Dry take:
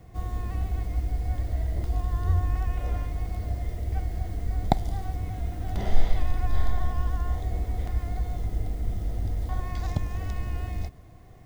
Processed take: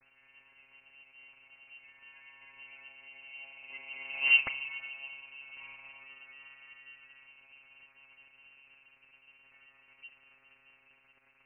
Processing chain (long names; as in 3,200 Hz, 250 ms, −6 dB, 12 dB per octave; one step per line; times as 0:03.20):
source passing by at 0:04.30, 20 m/s, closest 1.4 metres
parametric band 2,100 Hz +8.5 dB 1.2 octaves
notch filter 1,600 Hz, Q 7.7
surface crackle 540 per second −56 dBFS
sine wavefolder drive 18 dB, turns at −10 dBFS
channel vocoder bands 32, saw 139 Hz
voice inversion scrambler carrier 2,900 Hz
level −5.5 dB